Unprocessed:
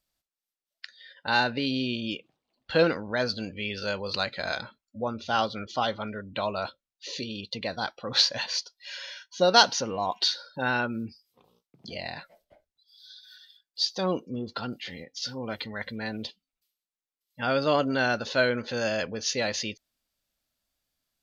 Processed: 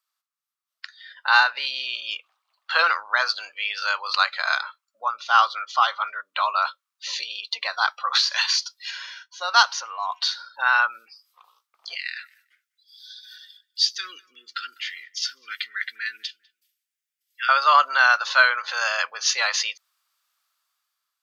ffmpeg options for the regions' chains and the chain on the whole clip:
-filter_complex "[0:a]asettb=1/sr,asplit=3[a][b][c];[a]atrim=end=8.154[d];[b]atrim=start=8.15:end=8.91,asetpts=PTS-STARTPTS,afade=t=in:d=0.004:c=qsin,afade=t=out:st=0.756:d=0.004:c=qsin,tiltshelf=f=1.2k:g=-8,acompressor=threshold=-24dB:ratio=8:attack=3.2:release=140:knee=1:detection=peak[e];[c]atrim=start=8.906[f];[d][e]acrossfade=d=0.004:c1=hsin:c2=qsin[g];[g][f]acrossfade=d=0.004:c1=qsin:c2=hsin,asettb=1/sr,asplit=3[h][i][j];[h]atrim=end=11.954[k];[i]atrim=start=11.95:end=17.49,asetpts=PTS-STARTPTS,afade=t=in:d=0.004:c=qsin,afade=t=out:st=5.536:d=0.004:c=qsin,asuperstop=centerf=780:order=8:qfactor=0.61,equalizer=f=4.1k:t=o:w=0.2:g=-6.5,asplit=2[l][m];[m]adelay=199,lowpass=f=2.1k:p=1,volume=-23dB,asplit=2[n][o];[o]adelay=199,lowpass=f=2.1k:p=1,volume=0.24[p];[l][n][p]amix=inputs=3:normalize=0,atrim=end_sample=244314[q];[j]atrim=start=17.486[r];[k][q]acrossfade=d=0.004:c1=hsin:c2=qsin[s];[s][r]acrossfade=d=0.004:c1=qsin:c2=hsin,highpass=f=890:w=0.5412,highpass=f=890:w=1.3066,equalizer=f=1.2k:t=o:w=0.5:g=12.5,dynaudnorm=f=240:g=7:m=9dB,volume=-1dB"

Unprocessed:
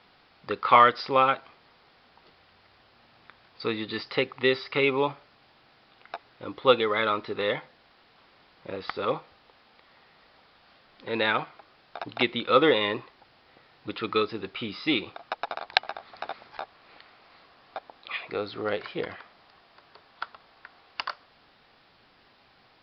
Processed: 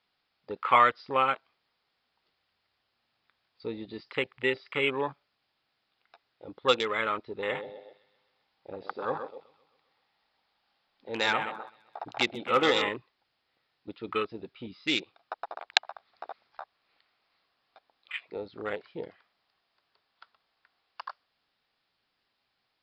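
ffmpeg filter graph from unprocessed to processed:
-filter_complex "[0:a]asettb=1/sr,asplit=3[a][b][c];[a]atrim=end=7.374[d];[b]atrim=start=7.37:end=12.89,asetpts=PTS-STARTPTS,afade=t=in:d=0.004:c=qsin,afade=t=out:st=5.516:d=0.004:c=qsin,equalizer=f=830:t=o:w=0.3:g=7.5,aeval=exprs='0.316*(abs(mod(val(0)/0.316+3,4)-2)-1)':c=same,aecho=1:1:129|258|387|516|645|774|903:0.398|0.231|0.134|0.0777|0.0451|0.0261|0.0152,atrim=end_sample=243432[e];[c]atrim=start=12.886[f];[d][e]acrossfade=d=0.004:c1=hsin:c2=qsin[g];[g][f]acrossfade=d=0.004:c1=qsin:c2=hsin,afwtdn=0.0282,highshelf=f=2k:g=9,volume=-6dB"

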